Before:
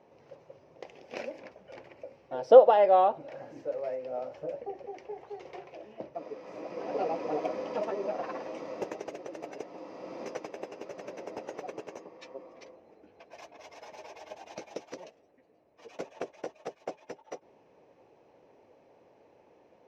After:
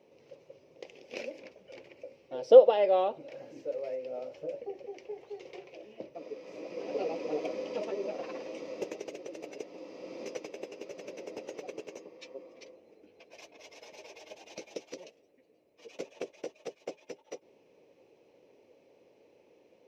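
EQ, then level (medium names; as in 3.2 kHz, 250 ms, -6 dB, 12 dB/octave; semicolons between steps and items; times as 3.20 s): bass shelf 220 Hz -10.5 dB; high-order bell 1.1 kHz -10.5 dB; +2.5 dB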